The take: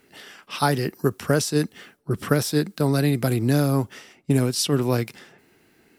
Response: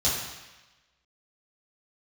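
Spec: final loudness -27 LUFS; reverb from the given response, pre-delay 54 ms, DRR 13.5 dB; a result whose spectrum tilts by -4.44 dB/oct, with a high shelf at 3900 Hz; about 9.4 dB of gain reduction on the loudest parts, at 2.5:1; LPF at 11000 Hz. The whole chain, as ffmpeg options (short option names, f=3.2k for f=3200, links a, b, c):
-filter_complex "[0:a]lowpass=11k,highshelf=f=3.9k:g=8,acompressor=threshold=-29dB:ratio=2.5,asplit=2[a][b];[1:a]atrim=start_sample=2205,adelay=54[c];[b][c]afir=irnorm=-1:irlink=0,volume=-25dB[d];[a][d]amix=inputs=2:normalize=0,volume=3dB"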